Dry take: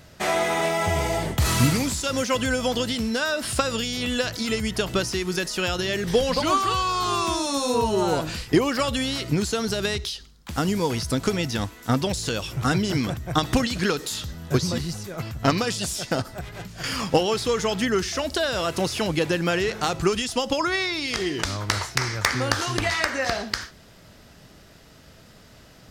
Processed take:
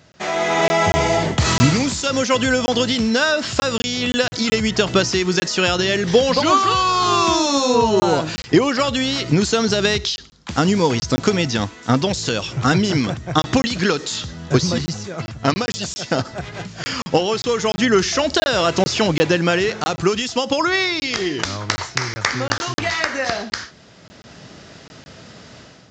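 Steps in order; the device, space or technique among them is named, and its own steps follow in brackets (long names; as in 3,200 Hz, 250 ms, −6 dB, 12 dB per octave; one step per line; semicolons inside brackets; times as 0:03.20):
call with lost packets (high-pass filter 100 Hz 12 dB per octave; downsampling to 16,000 Hz; automatic gain control gain up to 11 dB; dropped packets of 20 ms random)
level −1 dB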